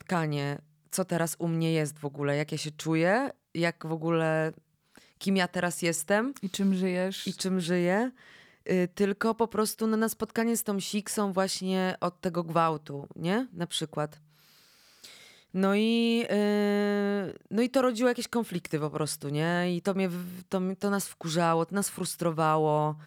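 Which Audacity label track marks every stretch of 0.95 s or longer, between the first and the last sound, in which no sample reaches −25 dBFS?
14.050000	15.560000	silence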